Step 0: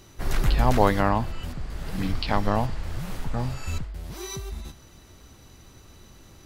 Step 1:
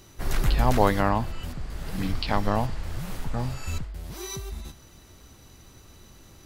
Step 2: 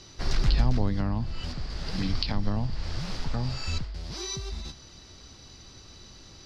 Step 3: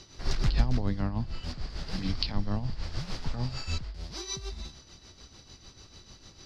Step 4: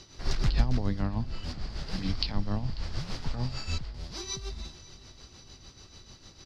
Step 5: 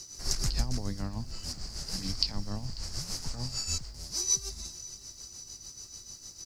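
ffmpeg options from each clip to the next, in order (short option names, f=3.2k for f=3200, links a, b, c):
-af "highshelf=f=7.6k:g=4,volume=-1dB"
-filter_complex "[0:a]acrossover=split=270[a][b];[b]acompressor=threshold=-35dB:ratio=10[c];[a][c]amix=inputs=2:normalize=0,lowpass=f=4.9k:t=q:w=3.9"
-af "tremolo=f=6.7:d=0.63"
-af "aecho=1:1:542|1084|1626|2168|2710:0.1|0.059|0.0348|0.0205|0.0121"
-af "aexciter=amount=13.6:drive=3.8:freq=5.2k,volume=-5.5dB"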